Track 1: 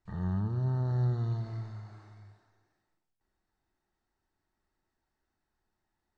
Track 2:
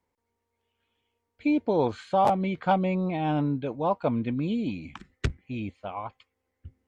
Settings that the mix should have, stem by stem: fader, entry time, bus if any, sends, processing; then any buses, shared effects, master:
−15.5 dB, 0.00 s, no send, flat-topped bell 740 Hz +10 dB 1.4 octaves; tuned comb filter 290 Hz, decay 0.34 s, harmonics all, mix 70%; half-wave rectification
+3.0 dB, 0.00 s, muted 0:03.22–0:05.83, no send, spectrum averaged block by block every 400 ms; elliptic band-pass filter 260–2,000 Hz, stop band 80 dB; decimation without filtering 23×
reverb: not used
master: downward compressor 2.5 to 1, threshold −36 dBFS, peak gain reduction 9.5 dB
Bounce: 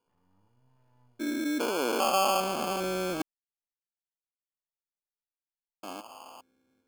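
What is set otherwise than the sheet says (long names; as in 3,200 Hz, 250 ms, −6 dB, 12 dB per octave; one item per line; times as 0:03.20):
stem 1 −15.5 dB → −23.5 dB
master: missing downward compressor 2.5 to 1, threshold −36 dBFS, peak gain reduction 9.5 dB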